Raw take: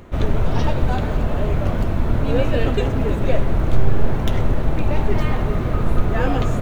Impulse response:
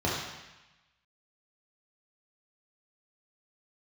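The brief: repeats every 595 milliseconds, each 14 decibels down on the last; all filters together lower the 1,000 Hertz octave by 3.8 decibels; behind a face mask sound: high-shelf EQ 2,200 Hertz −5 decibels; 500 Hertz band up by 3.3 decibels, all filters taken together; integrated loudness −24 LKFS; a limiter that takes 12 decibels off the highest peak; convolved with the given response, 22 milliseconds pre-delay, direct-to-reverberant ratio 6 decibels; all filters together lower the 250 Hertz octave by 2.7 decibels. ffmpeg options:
-filter_complex "[0:a]equalizer=frequency=250:width_type=o:gain=-5.5,equalizer=frequency=500:width_type=o:gain=7.5,equalizer=frequency=1000:width_type=o:gain=-7.5,alimiter=limit=-13.5dB:level=0:latency=1,aecho=1:1:595|1190:0.2|0.0399,asplit=2[link_01][link_02];[1:a]atrim=start_sample=2205,adelay=22[link_03];[link_02][link_03]afir=irnorm=-1:irlink=0,volume=-17.5dB[link_04];[link_01][link_04]amix=inputs=2:normalize=0,highshelf=frequency=2200:gain=-5,volume=-1.5dB"

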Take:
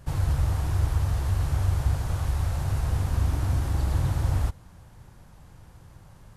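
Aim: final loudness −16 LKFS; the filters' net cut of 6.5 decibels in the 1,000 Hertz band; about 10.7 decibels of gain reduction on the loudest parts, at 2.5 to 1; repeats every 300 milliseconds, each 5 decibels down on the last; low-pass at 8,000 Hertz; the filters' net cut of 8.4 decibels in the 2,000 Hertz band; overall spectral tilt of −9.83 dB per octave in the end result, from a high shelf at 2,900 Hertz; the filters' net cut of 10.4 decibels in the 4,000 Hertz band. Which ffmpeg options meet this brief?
ffmpeg -i in.wav -af "lowpass=8000,equalizer=frequency=1000:width_type=o:gain=-6.5,equalizer=frequency=2000:width_type=o:gain=-5.5,highshelf=frequency=2900:gain=-4,equalizer=frequency=4000:width_type=o:gain=-8,acompressor=threshold=-36dB:ratio=2.5,aecho=1:1:300|600|900|1200|1500|1800|2100:0.562|0.315|0.176|0.0988|0.0553|0.031|0.0173,volume=19.5dB" out.wav

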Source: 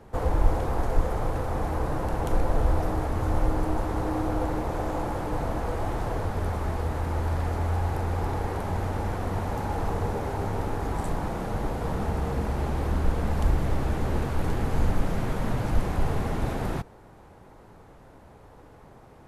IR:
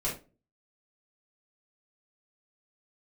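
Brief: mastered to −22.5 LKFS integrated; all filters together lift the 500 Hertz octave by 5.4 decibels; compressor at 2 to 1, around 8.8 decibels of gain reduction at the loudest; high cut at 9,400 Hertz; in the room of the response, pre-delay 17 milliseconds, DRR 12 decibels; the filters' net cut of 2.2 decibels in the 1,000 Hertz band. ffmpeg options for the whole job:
-filter_complex "[0:a]lowpass=9400,equalizer=frequency=500:width_type=o:gain=8,equalizer=frequency=1000:width_type=o:gain=-6.5,acompressor=threshold=-31dB:ratio=2,asplit=2[link_01][link_02];[1:a]atrim=start_sample=2205,adelay=17[link_03];[link_02][link_03]afir=irnorm=-1:irlink=0,volume=-18dB[link_04];[link_01][link_04]amix=inputs=2:normalize=0,volume=10dB"

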